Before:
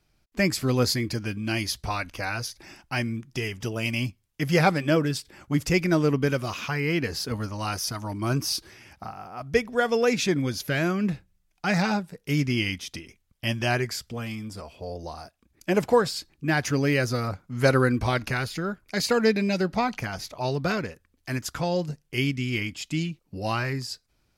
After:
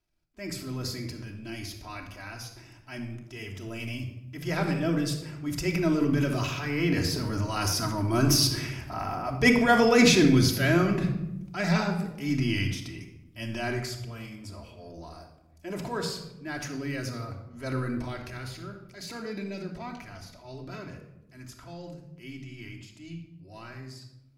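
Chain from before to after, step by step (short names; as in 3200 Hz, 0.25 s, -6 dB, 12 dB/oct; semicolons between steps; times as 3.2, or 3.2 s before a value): Doppler pass-by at 9.15, 5 m/s, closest 5.2 m; transient shaper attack -7 dB, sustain +7 dB; shoebox room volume 3400 m³, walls furnished, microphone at 2.9 m; gain +4.5 dB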